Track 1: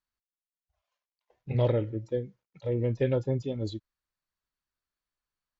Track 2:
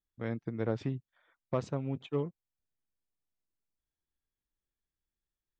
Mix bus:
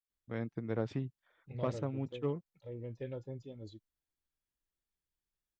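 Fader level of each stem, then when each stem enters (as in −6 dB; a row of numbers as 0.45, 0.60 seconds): −15.5, −2.5 decibels; 0.00, 0.10 seconds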